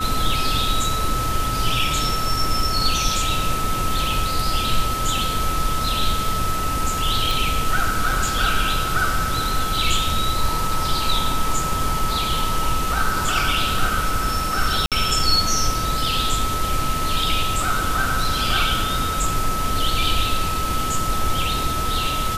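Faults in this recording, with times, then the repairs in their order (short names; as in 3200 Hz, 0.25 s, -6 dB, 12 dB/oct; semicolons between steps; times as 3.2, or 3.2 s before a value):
tone 1300 Hz -24 dBFS
7.31 pop
14.86–14.92 gap 57 ms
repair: de-click; notch 1300 Hz, Q 30; interpolate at 14.86, 57 ms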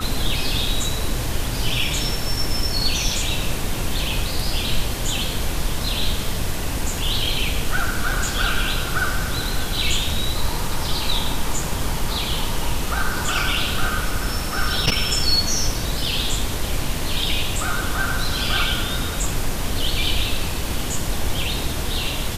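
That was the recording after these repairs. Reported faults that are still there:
none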